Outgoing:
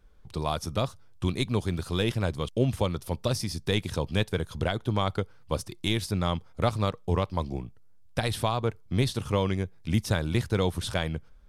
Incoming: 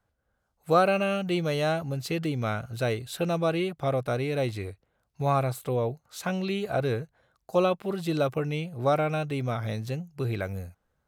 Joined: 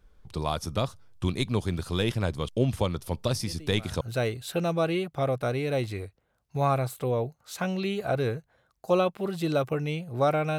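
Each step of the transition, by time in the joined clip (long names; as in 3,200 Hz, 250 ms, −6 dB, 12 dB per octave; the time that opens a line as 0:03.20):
outgoing
0:03.43: mix in incoming from 0:02.08 0.58 s −17 dB
0:04.01: continue with incoming from 0:02.66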